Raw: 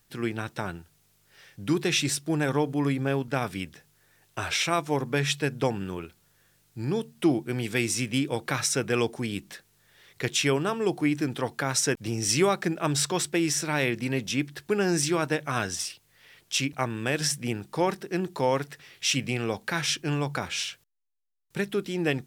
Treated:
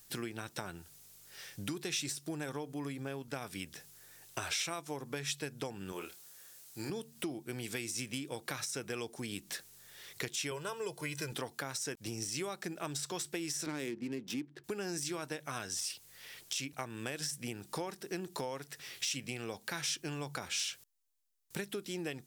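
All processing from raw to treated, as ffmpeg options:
-filter_complex "[0:a]asettb=1/sr,asplit=3[a][b][c];[a]atrim=end=5.924[d];[b]atrim=start=5.92:end=6.9,asetpts=PTS-STARTPTS,afade=t=in:d=0.004:c=qsin,afade=t=out:st=0.976:d=0.004:c=qsin,bass=f=250:g=-12,treble=f=4k:g=2,asplit=2[e][f];[f]adelay=28,volume=-8dB[g];[e][g]amix=inputs=2:normalize=0,atrim=end_sample=43218[h];[c]atrim=start=6.896[i];[d][h]acrossfade=d=0.004:c1=hsin:c2=qsin[j];[j][i]acrossfade=d=0.004:c1=qsin:c2=hsin,asettb=1/sr,asplit=3[k][l][m];[k]atrim=end=10.514[n];[l]atrim=start=10.51:end=11.32,asetpts=PTS-STARTPTS,afade=t=in:d=0.004:c=qsin,afade=t=out:st=0.806:d=0.004:c=qsin,equalizer=f=320:t=o:w=0.67:g=-8,aecho=1:1:2:0.78,atrim=end_sample=35721[o];[m]atrim=start=11.316[p];[n][o]acrossfade=d=0.004:c1=hsin:c2=qsin[q];[q][p]acrossfade=d=0.004:c1=qsin:c2=hsin,asettb=1/sr,asplit=3[r][s][t];[r]atrim=end=13.664[u];[s]atrim=start=13.66:end=14.64,asetpts=PTS-STARTPTS,afade=t=in:d=0.004:c=qsin,afade=t=out:st=0.976:d=0.004:c=qsin,lowshelf=f=470:t=q:w=1.5:g=8.5,adynamicsmooth=sensitivity=5:basefreq=1.4k,highpass=200[v];[t]atrim=start=14.636[w];[u][v]acrossfade=d=0.004:c1=hsin:c2=qsin[x];[x][w]acrossfade=d=0.004:c1=qsin:c2=hsin,acompressor=threshold=-37dB:ratio=8,bass=f=250:g=-3,treble=f=4k:g=9,deesser=0.7,volume=1dB"

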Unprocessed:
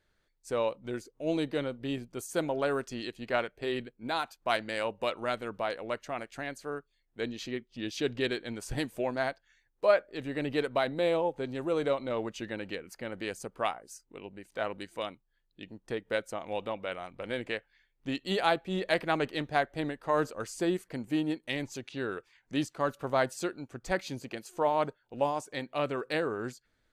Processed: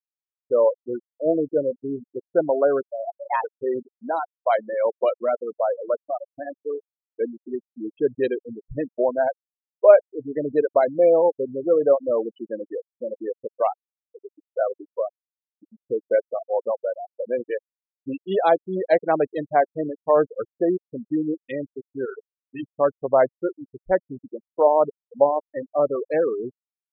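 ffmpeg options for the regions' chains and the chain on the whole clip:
-filter_complex "[0:a]asettb=1/sr,asplit=3[a][b][c];[a]atrim=end=2.914[d];[b]atrim=start=2.91:end=3.44,asetpts=PTS-STARTPTS,afade=t=in:d=0.004:c=qsin,afade=t=out:st=0.526:d=0.004:c=qsin,bandreject=f=60:t=h:w=6,bandreject=f=120:t=h:w=6,bandreject=f=180:t=h:w=6,bandreject=f=240:t=h:w=6,bandreject=f=300:t=h:w=6,afreqshift=330[e];[c]atrim=start=3.436[f];[d][e]acrossfade=d=0.004:c1=hsin:c2=qsin[g];[g][f]acrossfade=d=0.004:c1=qsin:c2=hsin,asettb=1/sr,asplit=3[h][i][j];[h]atrim=end=22.054[k];[i]atrim=start=22.05:end=22.63,asetpts=PTS-STARTPTS,afade=t=in:d=0.004:c=qsin,afade=t=out:st=0.576:d=0.004:c=qsin,highpass=92,equalizer=f=270:t=o:w=1.5:g=-9.5,asplit=2[l][m];[m]adelay=23,volume=-6dB[n];[l][n]amix=inputs=2:normalize=0,atrim=end_sample=25578[o];[j]atrim=start=22.626[p];[k][o]acrossfade=d=0.004:c1=hsin:c2=qsin[q];[q][p]acrossfade=d=0.004:c1=qsin:c2=hsin,afftfilt=real='re*gte(hypot(re,im),0.0631)':imag='im*gte(hypot(re,im),0.0631)':win_size=1024:overlap=0.75,equalizer=f=550:t=o:w=1.7:g=14,volume=-1dB"

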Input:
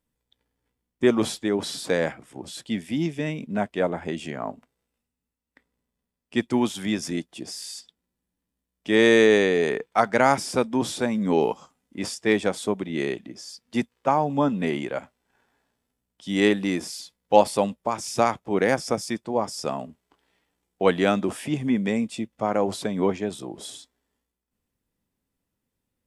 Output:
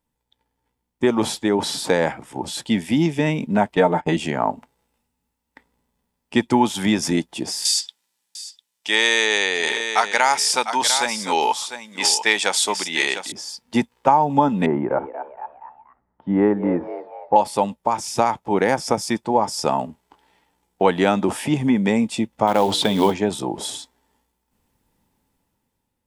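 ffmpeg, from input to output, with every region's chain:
-filter_complex "[0:a]asettb=1/sr,asplit=3[a][b][c];[a]atrim=end=3.734[d];[b]atrim=start=3.73:end=4.17,asetpts=PTS-STARTPTS,afade=t=in:d=0.004:c=qsin,afade=t=out:st=0.436:d=0.004:c=qsin,agate=range=-38dB:threshold=-36dB:ratio=16:release=100:detection=peak,aecho=1:1:6.6:0.84,atrim=end_sample=19404,acompressor=mode=upward:threshold=-31dB:ratio=2.5:attack=3.2:release=140:knee=2.83:detection=peak[e];[c]atrim=start=4.166[f];[d][e]acrossfade=d=0.004:c1=hsin:c2=qsin[g];[g][f]acrossfade=d=0.004:c1=qsin:c2=hsin,asettb=1/sr,asplit=3[h][i][j];[h]atrim=end=7.654[k];[i]atrim=start=7.65:end=13.32,asetpts=PTS-STARTPTS,afade=t=in:d=0.004:c=qsin,afade=t=out:st=5.666:d=0.004:c=qsin,highpass=f=1.2k:p=1,equalizer=f=5.6k:w=0.32:g=11.5,aecho=1:1:700:0.237,atrim=end_sample=250047[l];[j]atrim=start=13.316[m];[k][l]acrossfade=d=0.004:c1=hsin:c2=qsin[n];[n][m]acrossfade=d=0.004:c1=qsin:c2=hsin,asettb=1/sr,asplit=3[o][p][q];[o]atrim=end=14.664[r];[p]atrim=start=14.66:end=17.36,asetpts=PTS-STARTPTS,afade=t=in:d=0.004:c=qsin,afade=t=out:st=2.696:d=0.004:c=qsin,lowpass=f=1.4k:w=0.5412,lowpass=f=1.4k:w=1.3066,asplit=5[s][t][u][v][w];[t]adelay=236,afreqshift=130,volume=-13dB[x];[u]adelay=472,afreqshift=260,volume=-20.3dB[y];[v]adelay=708,afreqshift=390,volume=-27.7dB[z];[w]adelay=944,afreqshift=520,volume=-35dB[aa];[s][x][y][z][aa]amix=inputs=5:normalize=0,atrim=end_sample=119070[ab];[q]atrim=start=17.356[ac];[r][ab]acrossfade=d=0.004:c1=hsin:c2=qsin[ad];[ad][ac]acrossfade=d=0.004:c1=qsin:c2=hsin,asettb=1/sr,asplit=3[ae][af][ag];[ae]atrim=end=22.474[ah];[af]atrim=start=22.47:end=23.14,asetpts=PTS-STARTPTS,afade=t=in:d=0.004:c=qsin,afade=t=out:st=0.666:d=0.004:c=qsin,acrusher=bits=6:mode=log:mix=0:aa=0.000001,equalizer=f=3.4k:t=o:w=0.6:g=12.5,bandreject=f=60:t=h:w=6,bandreject=f=120:t=h:w=6,bandreject=f=180:t=h:w=6,bandreject=f=240:t=h:w=6,bandreject=f=300:t=h:w=6,bandreject=f=360:t=h:w=6,bandreject=f=420:t=h:w=6,bandreject=f=480:t=h:w=6[ai];[ag]atrim=start=23.136[aj];[ah][ai]acrossfade=d=0.004:c1=hsin:c2=qsin[ak];[ak][aj]acrossfade=d=0.004:c1=qsin:c2=hsin,dynaudnorm=f=320:g=7:m=11.5dB,equalizer=f=880:t=o:w=0.24:g=12,acompressor=threshold=-16dB:ratio=2.5,volume=1.5dB"

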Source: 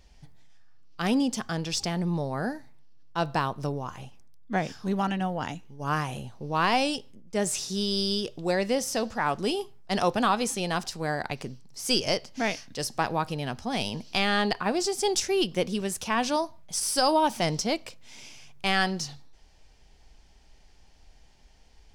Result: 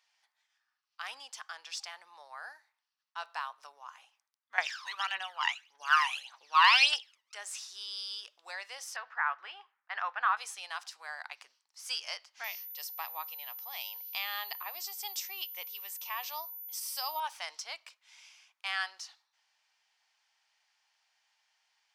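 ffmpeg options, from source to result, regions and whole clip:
-filter_complex "[0:a]asettb=1/sr,asplit=3[a][b][c];[a]atrim=end=4.584[d];[b]atrim=start=4.58:end=7.35,asetpts=PTS-STARTPTS,afade=t=in:d=0.004:c=qsin,afade=t=out:st=2.766:d=0.004:c=qsin,equalizer=f=3k:w=0.37:g=13.5,aphaser=in_gain=1:out_gain=1:delay=1.1:decay=0.71:speed=1.7:type=triangular[e];[c]atrim=start=7.346[f];[d][e]acrossfade=d=0.004:c1=hsin:c2=qsin[g];[g][f]acrossfade=d=0.004:c1=qsin:c2=hsin,asettb=1/sr,asplit=3[h][i][j];[h]atrim=end=8.964[k];[i]atrim=start=8.96:end=10.37,asetpts=PTS-STARTPTS,afade=t=in:d=0.004:c=qsin,afade=t=out:st=1.406:d=0.004:c=qsin,lowpass=f=1.7k:t=q:w=1.9,tiltshelf=f=760:g=-3.5[l];[j]atrim=start=10.366[m];[k][l]acrossfade=d=0.004:c1=hsin:c2=qsin[n];[n][m]acrossfade=d=0.004:c1=qsin:c2=hsin,asettb=1/sr,asplit=3[o][p][q];[o]atrim=end=12.444[r];[p]atrim=start=12.44:end=17.2,asetpts=PTS-STARTPTS,afade=t=in:d=0.004:c=qsin,afade=t=out:st=4.756:d=0.004:c=qsin,aeval=exprs='val(0)+0.0355*sin(2*PI*14000*n/s)':c=same,equalizer=f=1.5k:w=4.3:g=-12.5[s];[q]atrim=start=17.196[t];[r][s]acrossfade=d=0.004:c1=hsin:c2=qsin[u];[u][t]acrossfade=d=0.004:c1=qsin:c2=hsin,highpass=f=1k:w=0.5412,highpass=f=1k:w=1.3066,highshelf=f=4.6k:g=-7,volume=-6dB"

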